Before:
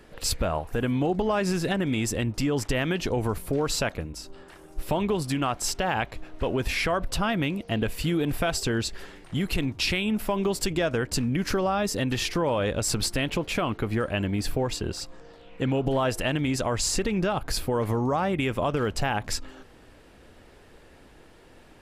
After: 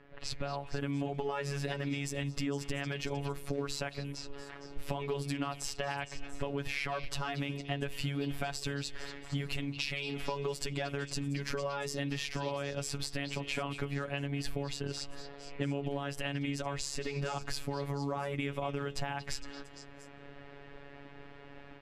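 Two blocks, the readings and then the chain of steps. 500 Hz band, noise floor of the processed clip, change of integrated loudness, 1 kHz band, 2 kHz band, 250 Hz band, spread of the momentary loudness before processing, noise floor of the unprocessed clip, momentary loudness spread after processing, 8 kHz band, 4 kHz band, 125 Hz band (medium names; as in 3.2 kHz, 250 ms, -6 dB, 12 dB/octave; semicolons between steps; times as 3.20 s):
-10.5 dB, -51 dBFS, -10.0 dB, -10.0 dB, -8.0 dB, -11.0 dB, 5 LU, -52 dBFS, 12 LU, -11.5 dB, -8.5 dB, -8.0 dB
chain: de-hum 69.44 Hz, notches 7; robot voice 141 Hz; peaking EQ 2.2 kHz +3 dB 0.77 oct; level rider gain up to 9 dB; level-controlled noise filter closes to 2.5 kHz, open at -19.5 dBFS; compression, threshold -26 dBFS, peak gain reduction 13.5 dB; treble shelf 9.9 kHz -8.5 dB; repeats whose band climbs or falls 230 ms, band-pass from 3.4 kHz, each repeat 0.7 oct, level -8.5 dB; trim -5 dB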